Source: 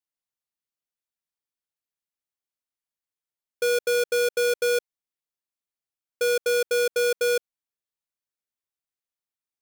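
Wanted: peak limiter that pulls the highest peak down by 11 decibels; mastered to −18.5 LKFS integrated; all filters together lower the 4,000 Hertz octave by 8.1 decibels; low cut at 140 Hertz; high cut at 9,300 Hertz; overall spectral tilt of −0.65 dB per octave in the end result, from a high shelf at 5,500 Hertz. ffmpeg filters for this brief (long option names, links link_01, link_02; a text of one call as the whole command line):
ffmpeg -i in.wav -af "highpass=140,lowpass=9300,equalizer=frequency=4000:width_type=o:gain=-6.5,highshelf=frequency=5500:gain=-8.5,volume=17.5dB,alimiter=limit=-12dB:level=0:latency=1" out.wav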